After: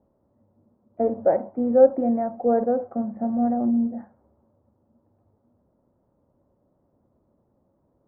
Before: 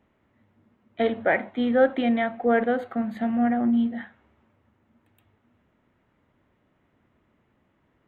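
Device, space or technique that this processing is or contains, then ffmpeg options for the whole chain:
under water: -af "lowpass=frequency=940:width=0.5412,lowpass=frequency=940:width=1.3066,equalizer=frequency=550:width_type=o:width=0.21:gain=8"

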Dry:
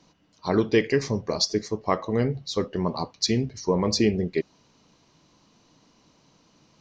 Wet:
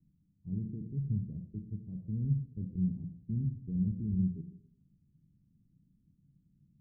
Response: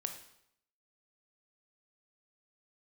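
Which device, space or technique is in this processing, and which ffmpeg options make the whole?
club heard from the street: -filter_complex "[0:a]alimiter=limit=-17.5dB:level=0:latency=1:release=24,lowpass=frequency=180:width=0.5412,lowpass=frequency=180:width=1.3066[link_01];[1:a]atrim=start_sample=2205[link_02];[link_01][link_02]afir=irnorm=-1:irlink=0"

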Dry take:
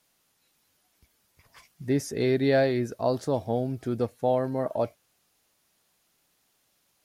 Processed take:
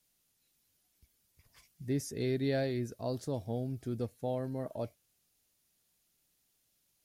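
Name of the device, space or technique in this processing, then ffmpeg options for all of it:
smiley-face EQ: -af "lowshelf=frequency=110:gain=8,equalizer=frequency=1000:width_type=o:width=1.9:gain=-6.5,highshelf=frequency=6000:gain=5.5,volume=-8dB"

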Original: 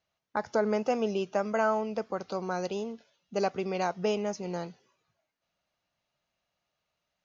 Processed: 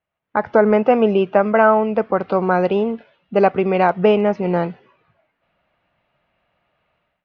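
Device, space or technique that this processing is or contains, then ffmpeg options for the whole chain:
action camera in a waterproof case: -af "lowpass=frequency=2700:width=0.5412,lowpass=frequency=2700:width=1.3066,dynaudnorm=framelen=120:gausssize=5:maxgain=16.5dB" -ar 48000 -c:a aac -b:a 128k

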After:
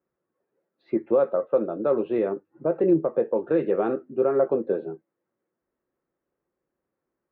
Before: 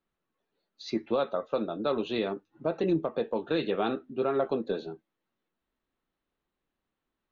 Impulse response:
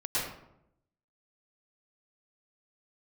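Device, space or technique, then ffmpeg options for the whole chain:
bass cabinet: -af "highpass=64,equalizer=frequency=150:width_type=q:width=4:gain=4,equalizer=frequency=360:width_type=q:width=4:gain=8,equalizer=frequency=530:width_type=q:width=4:gain=9,lowpass=frequency=2000:width=0.5412,lowpass=frequency=2000:width=1.3066"

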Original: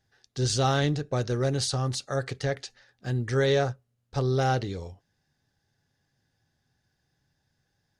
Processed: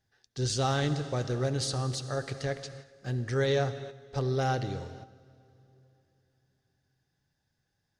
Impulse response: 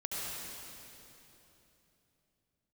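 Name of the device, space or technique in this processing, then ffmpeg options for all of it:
keyed gated reverb: -filter_complex "[0:a]asplit=3[link_01][link_02][link_03];[1:a]atrim=start_sample=2205[link_04];[link_02][link_04]afir=irnorm=-1:irlink=0[link_05];[link_03]apad=whole_len=352655[link_06];[link_05][link_06]sidechaingate=range=-9dB:threshold=-54dB:ratio=16:detection=peak,volume=-13dB[link_07];[link_01][link_07]amix=inputs=2:normalize=0,volume=-5dB"

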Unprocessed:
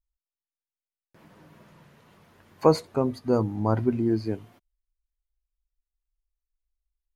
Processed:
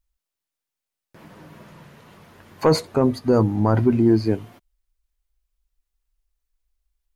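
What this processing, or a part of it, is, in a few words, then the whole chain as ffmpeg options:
soft clipper into limiter: -af "asoftclip=type=tanh:threshold=-9.5dB,alimiter=limit=-16dB:level=0:latency=1:release=15,volume=8.5dB"

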